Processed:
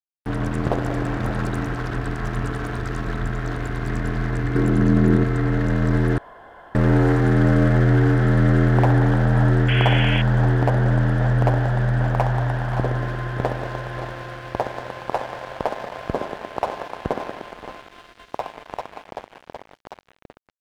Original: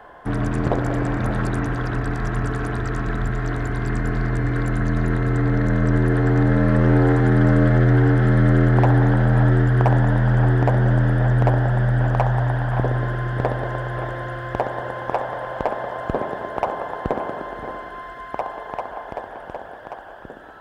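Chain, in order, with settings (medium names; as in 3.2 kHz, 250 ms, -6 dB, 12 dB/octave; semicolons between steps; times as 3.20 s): crossover distortion -33 dBFS; 4.55–5.24 s: small resonant body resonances 200/330 Hz, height 9 dB, ringing for 20 ms; 6.18–6.75 s: room tone; 9.68–10.22 s: painted sound noise 1.4–3.4 kHz -26 dBFS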